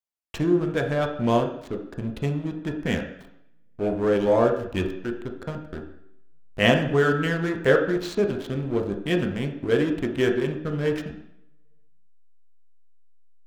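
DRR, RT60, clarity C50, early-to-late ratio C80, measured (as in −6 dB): 2.5 dB, 0.70 s, 7.5 dB, 11.0 dB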